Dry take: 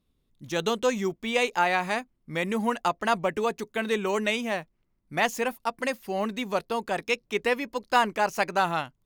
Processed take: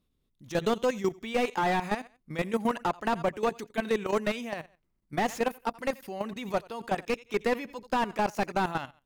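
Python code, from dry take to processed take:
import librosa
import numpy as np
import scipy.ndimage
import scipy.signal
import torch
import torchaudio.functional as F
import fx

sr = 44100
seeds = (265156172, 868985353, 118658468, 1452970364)

y = fx.echo_feedback(x, sr, ms=85, feedback_pct=27, wet_db=-22.0)
y = fx.level_steps(y, sr, step_db=13)
y = fx.slew_limit(y, sr, full_power_hz=53.0)
y = F.gain(torch.from_numpy(y), 2.5).numpy()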